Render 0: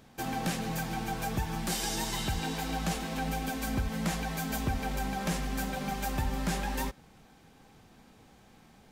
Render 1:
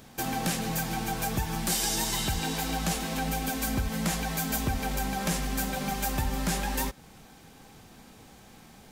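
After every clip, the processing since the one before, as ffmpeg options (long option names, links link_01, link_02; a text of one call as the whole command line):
ffmpeg -i in.wav -filter_complex "[0:a]highshelf=frequency=5300:gain=7.5,asplit=2[link_01][link_02];[link_02]acompressor=threshold=-39dB:ratio=6,volume=-1.5dB[link_03];[link_01][link_03]amix=inputs=2:normalize=0" out.wav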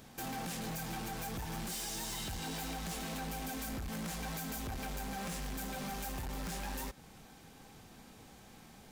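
ffmpeg -i in.wav -af "alimiter=limit=-22.5dB:level=0:latency=1:release=161,volume=33.5dB,asoftclip=hard,volume=-33.5dB,volume=-4dB" out.wav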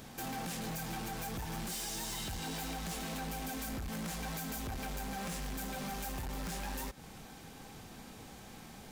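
ffmpeg -i in.wav -af "alimiter=level_in=18dB:limit=-24dB:level=0:latency=1:release=129,volume=-18dB,volume=5dB" out.wav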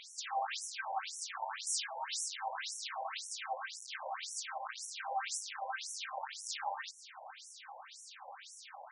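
ffmpeg -i in.wav -af "afftfilt=real='re*between(b*sr/1024,720*pow(7900/720,0.5+0.5*sin(2*PI*1.9*pts/sr))/1.41,720*pow(7900/720,0.5+0.5*sin(2*PI*1.9*pts/sr))*1.41)':imag='im*between(b*sr/1024,720*pow(7900/720,0.5+0.5*sin(2*PI*1.9*pts/sr))/1.41,720*pow(7900/720,0.5+0.5*sin(2*PI*1.9*pts/sr))*1.41)':win_size=1024:overlap=0.75,volume=9dB" out.wav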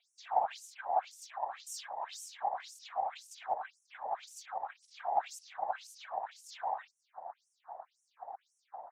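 ffmpeg -i in.wav -af "afwtdn=0.00398,highpass=frequency=730:width_type=q:width=7.5,afftfilt=real='hypot(re,im)*cos(2*PI*random(0))':imag='hypot(re,im)*sin(2*PI*random(1))':win_size=512:overlap=0.75,volume=-2.5dB" out.wav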